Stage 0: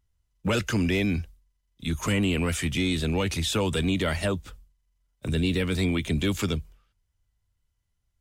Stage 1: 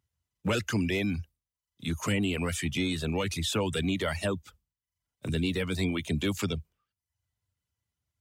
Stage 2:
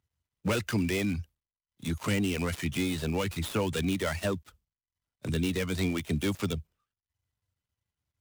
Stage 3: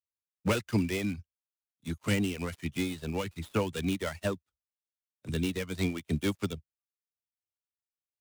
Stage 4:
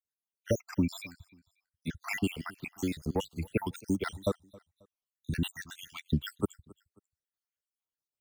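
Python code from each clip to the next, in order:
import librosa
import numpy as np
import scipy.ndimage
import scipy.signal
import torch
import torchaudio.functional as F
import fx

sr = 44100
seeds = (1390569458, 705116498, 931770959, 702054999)

y1 = fx.dereverb_blind(x, sr, rt60_s=0.6)
y1 = scipy.signal.sosfilt(scipy.signal.butter(4, 75.0, 'highpass', fs=sr, output='sos'), y1)
y1 = y1 * 10.0 ** (-2.5 / 20.0)
y2 = fx.dead_time(y1, sr, dead_ms=0.09)
y3 = fx.upward_expand(y2, sr, threshold_db=-47.0, expansion=2.5)
y3 = y3 * 10.0 ** (2.5 / 20.0)
y4 = fx.spec_dropout(y3, sr, seeds[0], share_pct=76)
y4 = fx.echo_feedback(y4, sr, ms=269, feedback_pct=33, wet_db=-23.5)
y4 = y4 * 10.0 ** (3.5 / 20.0)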